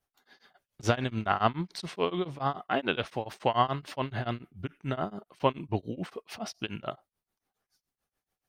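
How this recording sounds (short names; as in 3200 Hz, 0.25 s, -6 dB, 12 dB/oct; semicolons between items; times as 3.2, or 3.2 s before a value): tremolo triangle 7 Hz, depth 100%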